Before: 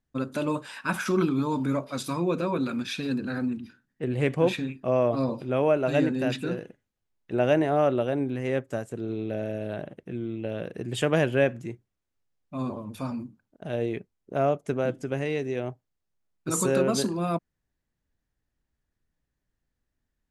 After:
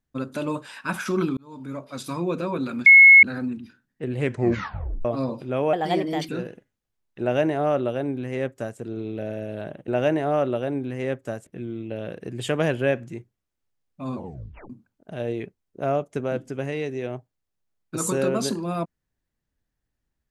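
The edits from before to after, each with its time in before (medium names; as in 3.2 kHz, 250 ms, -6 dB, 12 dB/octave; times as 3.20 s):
1.37–2.17 s: fade in linear
2.86–3.23 s: bleep 2.18 kHz -6.5 dBFS
4.24 s: tape stop 0.81 s
5.73–6.41 s: speed 122%
7.33–8.92 s: copy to 10.00 s
12.69 s: tape stop 0.54 s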